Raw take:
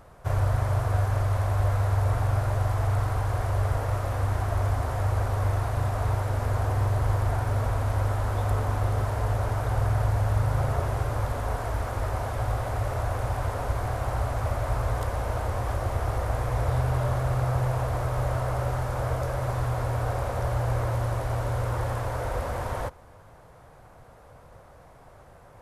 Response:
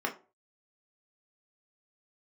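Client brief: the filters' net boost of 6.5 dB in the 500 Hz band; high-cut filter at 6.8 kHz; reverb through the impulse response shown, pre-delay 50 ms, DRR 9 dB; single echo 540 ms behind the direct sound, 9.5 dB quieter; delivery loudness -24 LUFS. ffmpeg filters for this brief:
-filter_complex "[0:a]lowpass=6800,equalizer=f=500:t=o:g=8,aecho=1:1:540:0.335,asplit=2[s0][s1];[1:a]atrim=start_sample=2205,adelay=50[s2];[s1][s2]afir=irnorm=-1:irlink=0,volume=0.158[s3];[s0][s3]amix=inputs=2:normalize=0,volume=1.19"

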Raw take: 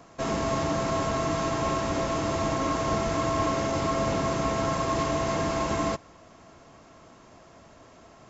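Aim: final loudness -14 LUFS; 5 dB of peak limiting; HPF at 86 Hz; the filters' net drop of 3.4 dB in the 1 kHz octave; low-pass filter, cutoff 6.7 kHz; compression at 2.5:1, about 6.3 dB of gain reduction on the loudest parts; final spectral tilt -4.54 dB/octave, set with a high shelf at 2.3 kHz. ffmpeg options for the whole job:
-af "highpass=86,lowpass=6700,equalizer=f=1000:t=o:g=-5,highshelf=f=2300:g=4.5,acompressor=threshold=0.02:ratio=2.5,volume=12.6,alimiter=limit=0.596:level=0:latency=1"

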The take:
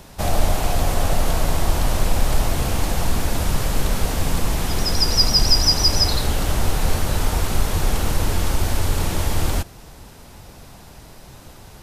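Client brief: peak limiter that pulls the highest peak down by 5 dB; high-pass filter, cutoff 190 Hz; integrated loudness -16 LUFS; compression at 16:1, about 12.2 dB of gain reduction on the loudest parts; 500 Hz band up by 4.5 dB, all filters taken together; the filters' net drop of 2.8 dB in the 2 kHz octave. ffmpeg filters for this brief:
-af "highpass=190,equalizer=f=500:t=o:g=6,equalizer=f=2000:t=o:g=-4,acompressor=threshold=0.0562:ratio=16,volume=5.01,alimiter=limit=0.447:level=0:latency=1"

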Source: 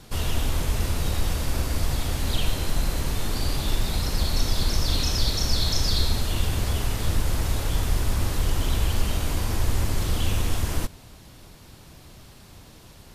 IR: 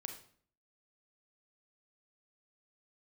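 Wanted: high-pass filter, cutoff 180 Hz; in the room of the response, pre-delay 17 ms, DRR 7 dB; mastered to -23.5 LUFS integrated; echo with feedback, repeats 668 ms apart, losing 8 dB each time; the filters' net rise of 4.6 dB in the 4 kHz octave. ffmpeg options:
-filter_complex "[0:a]highpass=180,equalizer=f=4000:t=o:g=5.5,aecho=1:1:668|1336|2004|2672|3340:0.398|0.159|0.0637|0.0255|0.0102,asplit=2[s0][s1];[1:a]atrim=start_sample=2205,adelay=17[s2];[s1][s2]afir=irnorm=-1:irlink=0,volume=0.596[s3];[s0][s3]amix=inputs=2:normalize=0,volume=1.33"

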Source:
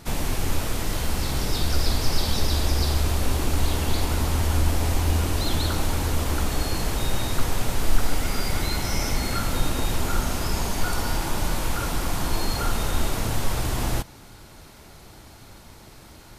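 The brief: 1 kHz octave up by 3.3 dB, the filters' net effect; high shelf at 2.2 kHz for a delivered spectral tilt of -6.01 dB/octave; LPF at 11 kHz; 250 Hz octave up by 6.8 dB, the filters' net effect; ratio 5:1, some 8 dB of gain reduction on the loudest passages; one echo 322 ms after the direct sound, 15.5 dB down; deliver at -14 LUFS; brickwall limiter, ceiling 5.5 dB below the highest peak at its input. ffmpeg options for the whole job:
-af "lowpass=11000,equalizer=f=250:t=o:g=8.5,equalizer=f=1000:t=o:g=5.5,highshelf=f=2200:g=-8.5,acompressor=threshold=0.112:ratio=5,alimiter=limit=0.141:level=0:latency=1,aecho=1:1:322:0.168,volume=5.31"

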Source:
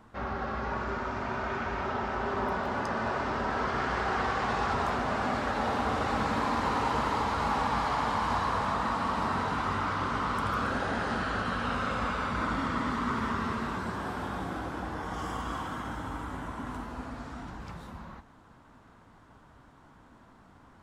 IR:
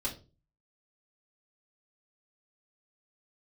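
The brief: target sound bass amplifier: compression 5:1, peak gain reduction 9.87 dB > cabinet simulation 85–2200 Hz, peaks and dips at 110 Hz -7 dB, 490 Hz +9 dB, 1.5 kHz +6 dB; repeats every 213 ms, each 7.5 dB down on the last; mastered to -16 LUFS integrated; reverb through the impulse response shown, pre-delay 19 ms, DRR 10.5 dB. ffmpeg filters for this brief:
-filter_complex "[0:a]aecho=1:1:213|426|639|852|1065:0.422|0.177|0.0744|0.0312|0.0131,asplit=2[s0][s1];[1:a]atrim=start_sample=2205,adelay=19[s2];[s1][s2]afir=irnorm=-1:irlink=0,volume=0.211[s3];[s0][s3]amix=inputs=2:normalize=0,acompressor=threshold=0.02:ratio=5,highpass=f=85:w=0.5412,highpass=f=85:w=1.3066,equalizer=f=110:t=q:w=4:g=-7,equalizer=f=490:t=q:w=4:g=9,equalizer=f=1500:t=q:w=4:g=6,lowpass=f=2200:w=0.5412,lowpass=f=2200:w=1.3066,volume=9.44"

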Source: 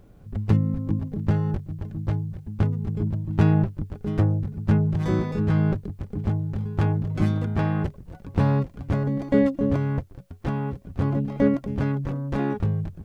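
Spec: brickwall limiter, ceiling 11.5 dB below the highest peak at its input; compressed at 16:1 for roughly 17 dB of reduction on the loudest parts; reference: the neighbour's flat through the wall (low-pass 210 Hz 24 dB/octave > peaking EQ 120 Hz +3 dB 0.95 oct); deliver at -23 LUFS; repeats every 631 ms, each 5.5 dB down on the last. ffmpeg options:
-af "acompressor=threshold=0.0282:ratio=16,alimiter=level_in=1.68:limit=0.0631:level=0:latency=1,volume=0.596,lowpass=f=210:w=0.5412,lowpass=f=210:w=1.3066,equalizer=f=120:t=o:w=0.95:g=3,aecho=1:1:631|1262|1893|2524|3155|3786|4417:0.531|0.281|0.149|0.079|0.0419|0.0222|0.0118,volume=4.22"

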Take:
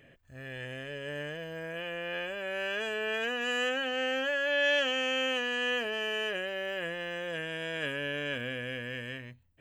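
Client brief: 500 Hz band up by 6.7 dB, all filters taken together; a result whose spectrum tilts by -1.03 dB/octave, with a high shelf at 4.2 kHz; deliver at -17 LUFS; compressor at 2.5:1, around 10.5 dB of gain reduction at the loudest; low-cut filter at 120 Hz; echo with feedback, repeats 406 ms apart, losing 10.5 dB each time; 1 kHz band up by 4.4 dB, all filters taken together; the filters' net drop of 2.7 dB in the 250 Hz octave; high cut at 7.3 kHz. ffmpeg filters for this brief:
-af "highpass=120,lowpass=7300,equalizer=f=250:t=o:g=-5.5,equalizer=f=500:t=o:g=7.5,equalizer=f=1000:t=o:g=4,highshelf=f=4200:g=-4,acompressor=threshold=0.0141:ratio=2.5,aecho=1:1:406|812|1218:0.299|0.0896|0.0269,volume=8.91"

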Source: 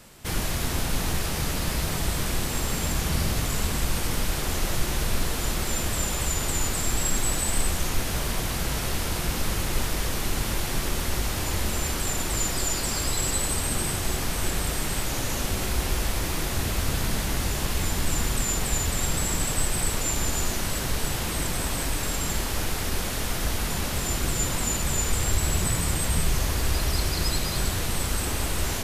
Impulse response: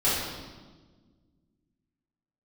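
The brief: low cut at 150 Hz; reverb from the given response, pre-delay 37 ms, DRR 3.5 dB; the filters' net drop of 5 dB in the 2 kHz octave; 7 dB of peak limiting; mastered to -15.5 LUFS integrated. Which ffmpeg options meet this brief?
-filter_complex "[0:a]highpass=150,equalizer=f=2000:t=o:g=-6.5,alimiter=limit=0.0794:level=0:latency=1,asplit=2[s0][s1];[1:a]atrim=start_sample=2205,adelay=37[s2];[s1][s2]afir=irnorm=-1:irlink=0,volume=0.141[s3];[s0][s3]amix=inputs=2:normalize=0,volume=4.73"

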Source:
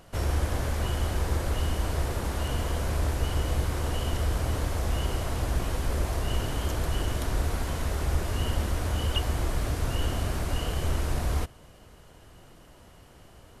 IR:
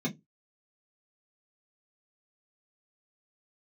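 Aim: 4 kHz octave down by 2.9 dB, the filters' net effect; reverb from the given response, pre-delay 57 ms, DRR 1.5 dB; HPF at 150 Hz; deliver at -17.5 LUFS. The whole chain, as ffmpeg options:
-filter_complex "[0:a]highpass=150,equalizer=f=4000:t=o:g=-4.5,asplit=2[s0][s1];[1:a]atrim=start_sample=2205,adelay=57[s2];[s1][s2]afir=irnorm=-1:irlink=0,volume=0.473[s3];[s0][s3]amix=inputs=2:normalize=0,volume=3.55"

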